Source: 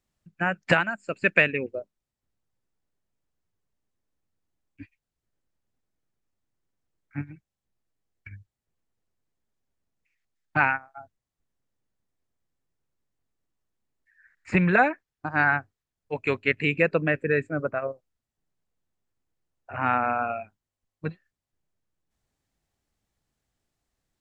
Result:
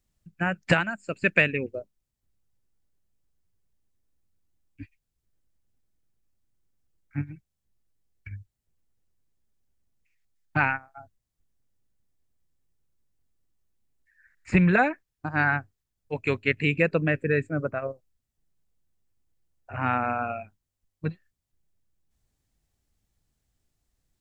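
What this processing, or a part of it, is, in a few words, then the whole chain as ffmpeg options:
smiley-face EQ: -af "lowshelf=frequency=120:gain=9,equalizer=frequency=1000:width_type=o:width=2.4:gain=-3,highshelf=frequency=6200:gain=5"

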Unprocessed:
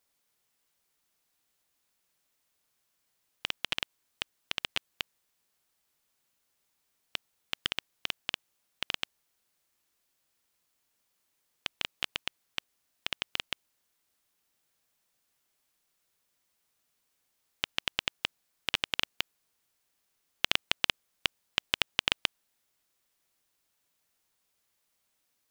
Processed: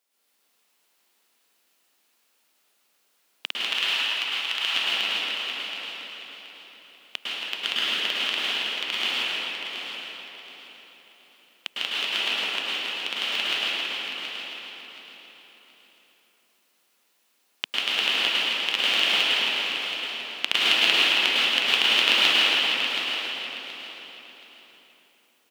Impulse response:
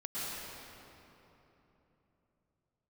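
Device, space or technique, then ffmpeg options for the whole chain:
stadium PA: -filter_complex "[0:a]asettb=1/sr,asplit=3[link_01][link_02][link_03];[link_01]atrim=end=3.594[link_04];[link_02]atrim=start=3.59:end=4.6,asetpts=PTS-STARTPTS,afade=type=in:duration=0.004:curve=qsin,afade=type=out:start_time=1.006:duration=0.004:curve=qsin,highpass=frequency=740:width=0.5412,highpass=frequency=740:width=1.3066[link_05];[link_03]atrim=start=4.596[link_06];[link_04][link_05]acrossfade=duration=0.004:curve1=hsin:curve2=qsin[link_07];[link_07][link_06]acrossfade=duration=0.004:curve1=qsin:curve2=hsin,highpass=frequency=230:width=0.5412,highpass=frequency=230:width=1.3066,equalizer=frequency=2900:width_type=o:width=0.73:gain=4,aecho=1:1:160.3|277:0.355|0.355,aecho=1:1:725|1450|2175:0.355|0.0958|0.0259[link_08];[1:a]atrim=start_sample=2205[link_09];[link_08][link_09]afir=irnorm=-1:irlink=0,volume=5dB"

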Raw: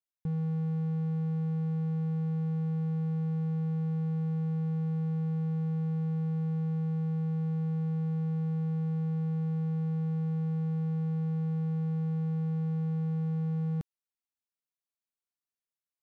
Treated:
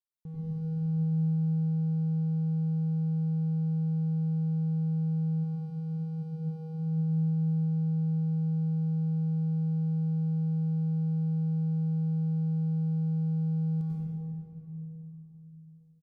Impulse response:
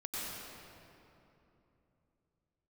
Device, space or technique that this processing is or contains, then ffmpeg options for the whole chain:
stairwell: -filter_complex "[0:a]asplit=3[link_01][link_02][link_03];[link_01]afade=type=out:start_time=5.43:duration=0.02[link_04];[link_02]highpass=250,afade=type=in:start_time=5.43:duration=0.02,afade=type=out:start_time=6.22:duration=0.02[link_05];[link_03]afade=type=in:start_time=6.22:duration=0.02[link_06];[link_04][link_05][link_06]amix=inputs=3:normalize=0,equalizer=frequency=1700:width=1:gain=-9,asplit=2[link_07][link_08];[link_08]adelay=816.3,volume=-27dB,highshelf=frequency=4000:gain=-18.4[link_09];[link_07][link_09]amix=inputs=2:normalize=0[link_10];[1:a]atrim=start_sample=2205[link_11];[link_10][link_11]afir=irnorm=-1:irlink=0,volume=-3dB"

